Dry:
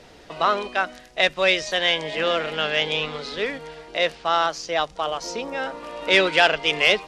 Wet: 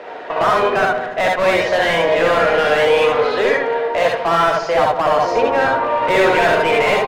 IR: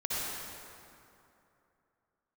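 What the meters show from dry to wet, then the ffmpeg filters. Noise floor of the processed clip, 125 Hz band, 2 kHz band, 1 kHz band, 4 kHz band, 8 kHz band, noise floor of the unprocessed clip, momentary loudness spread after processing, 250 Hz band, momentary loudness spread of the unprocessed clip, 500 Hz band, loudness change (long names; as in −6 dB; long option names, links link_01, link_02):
−28 dBFS, +9.0 dB, +4.5 dB, +9.5 dB, −2.5 dB, can't be measured, −48 dBFS, 4 LU, +8.0 dB, 11 LU, +10.5 dB, +6.5 dB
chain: -filter_complex "[0:a]acrossover=split=320 2800:gain=0.178 1 0.2[link_01][link_02][link_03];[link_01][link_02][link_03]amix=inputs=3:normalize=0,asplit=2[link_04][link_05];[link_05]highpass=frequency=720:poles=1,volume=29dB,asoftclip=type=tanh:threshold=-5dB[link_06];[link_04][link_06]amix=inputs=2:normalize=0,lowpass=frequency=1000:poles=1,volume=-6dB,volume=12.5dB,asoftclip=hard,volume=-12.5dB,asplit=2[link_07][link_08];[link_08]adelay=146,lowpass=frequency=1200:poles=1,volume=-9.5dB,asplit=2[link_09][link_10];[link_10]adelay=146,lowpass=frequency=1200:poles=1,volume=0.54,asplit=2[link_11][link_12];[link_12]adelay=146,lowpass=frequency=1200:poles=1,volume=0.54,asplit=2[link_13][link_14];[link_14]adelay=146,lowpass=frequency=1200:poles=1,volume=0.54,asplit=2[link_15][link_16];[link_16]adelay=146,lowpass=frequency=1200:poles=1,volume=0.54,asplit=2[link_17][link_18];[link_18]adelay=146,lowpass=frequency=1200:poles=1,volume=0.54[link_19];[link_07][link_09][link_11][link_13][link_15][link_17][link_19]amix=inputs=7:normalize=0[link_20];[1:a]atrim=start_sample=2205,atrim=end_sample=3528[link_21];[link_20][link_21]afir=irnorm=-1:irlink=0,volume=1.5dB"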